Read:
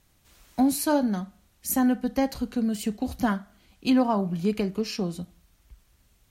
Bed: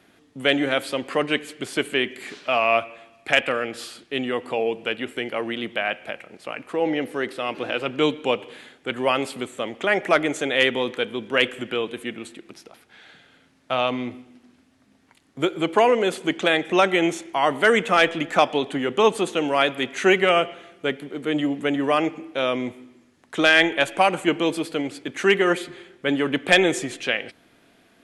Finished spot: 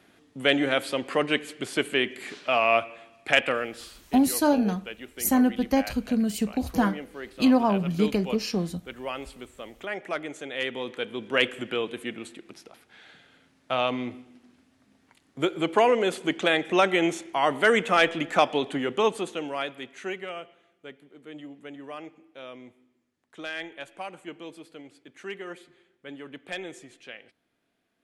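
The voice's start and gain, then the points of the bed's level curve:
3.55 s, +1.5 dB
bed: 0:03.51 −2 dB
0:04.15 −12.5 dB
0:10.50 −12.5 dB
0:11.32 −3 dB
0:18.79 −3 dB
0:20.37 −19 dB

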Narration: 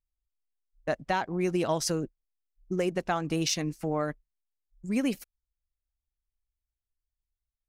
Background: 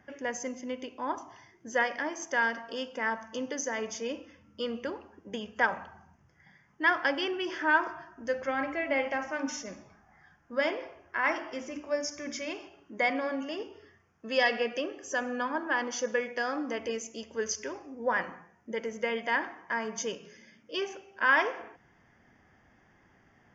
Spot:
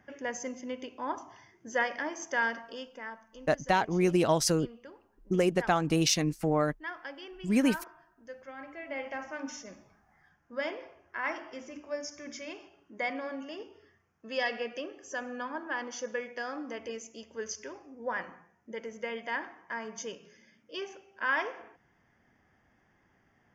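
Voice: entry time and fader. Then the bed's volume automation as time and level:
2.60 s, +2.5 dB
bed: 0:02.53 −1.5 dB
0:03.26 −14.5 dB
0:08.54 −14.5 dB
0:09.20 −5.5 dB

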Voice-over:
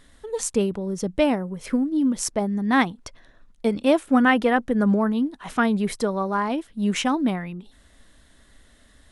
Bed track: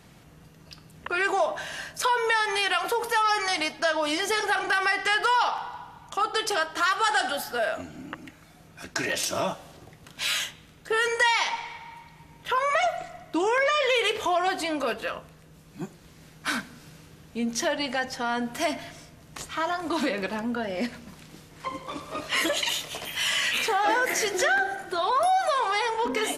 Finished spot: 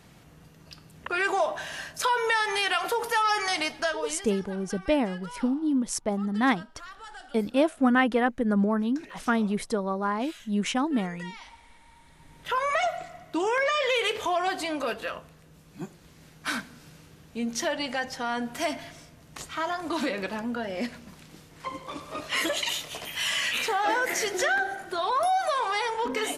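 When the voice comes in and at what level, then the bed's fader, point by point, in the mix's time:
3.70 s, −4.0 dB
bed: 0:03.80 −1 dB
0:04.44 −21 dB
0:11.61 −21 dB
0:12.39 −2 dB

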